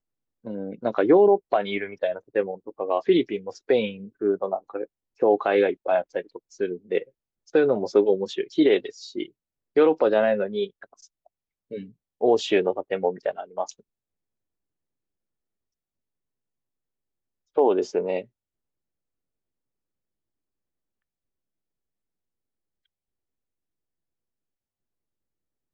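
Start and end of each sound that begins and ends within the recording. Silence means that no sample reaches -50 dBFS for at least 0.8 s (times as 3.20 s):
17.56–18.25 s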